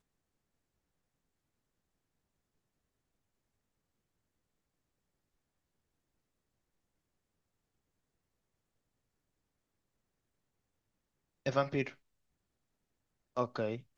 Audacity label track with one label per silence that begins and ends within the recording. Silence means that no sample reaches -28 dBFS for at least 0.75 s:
11.830000	13.380000	silence